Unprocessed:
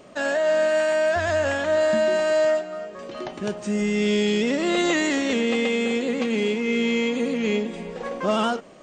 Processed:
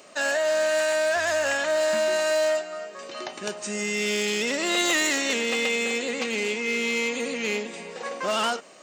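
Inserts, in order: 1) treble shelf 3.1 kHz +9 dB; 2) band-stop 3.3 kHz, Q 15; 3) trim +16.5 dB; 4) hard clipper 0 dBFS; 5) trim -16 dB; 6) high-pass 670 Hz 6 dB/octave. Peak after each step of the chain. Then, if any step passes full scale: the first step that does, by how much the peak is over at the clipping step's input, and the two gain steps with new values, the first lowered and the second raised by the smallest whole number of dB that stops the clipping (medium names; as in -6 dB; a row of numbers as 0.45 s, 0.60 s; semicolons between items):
-9.5 dBFS, -9.0 dBFS, +7.5 dBFS, 0.0 dBFS, -16.0 dBFS, -12.0 dBFS; step 3, 7.5 dB; step 3 +8.5 dB, step 5 -8 dB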